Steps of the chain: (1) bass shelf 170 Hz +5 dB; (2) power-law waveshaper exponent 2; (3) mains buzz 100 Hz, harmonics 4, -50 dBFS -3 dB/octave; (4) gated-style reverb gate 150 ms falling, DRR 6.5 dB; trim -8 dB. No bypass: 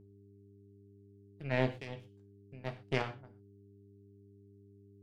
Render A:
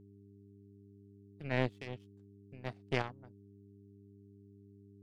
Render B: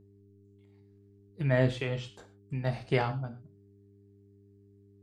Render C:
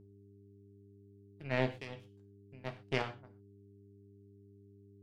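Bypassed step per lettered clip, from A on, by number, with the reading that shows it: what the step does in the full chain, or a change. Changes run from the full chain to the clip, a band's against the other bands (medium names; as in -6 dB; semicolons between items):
4, momentary loudness spread change +4 LU; 2, crest factor change -5.5 dB; 1, 125 Hz band -2.0 dB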